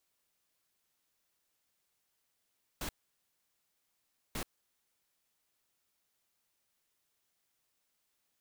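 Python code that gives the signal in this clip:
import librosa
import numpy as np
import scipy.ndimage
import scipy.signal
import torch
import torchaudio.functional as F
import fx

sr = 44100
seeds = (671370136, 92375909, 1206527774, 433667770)

y = fx.noise_burst(sr, seeds[0], colour='pink', on_s=0.08, off_s=1.46, bursts=2, level_db=-38.0)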